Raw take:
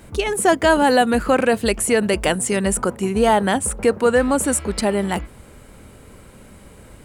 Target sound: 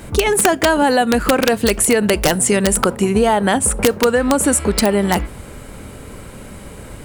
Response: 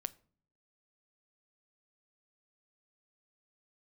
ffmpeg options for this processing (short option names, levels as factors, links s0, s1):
-filter_complex "[0:a]acompressor=threshold=0.1:ratio=8,aeval=exprs='(mod(4.73*val(0)+1,2)-1)/4.73':c=same,asplit=2[s0][s1];[1:a]atrim=start_sample=2205[s2];[s1][s2]afir=irnorm=-1:irlink=0,volume=1.41[s3];[s0][s3]amix=inputs=2:normalize=0,volume=1.33"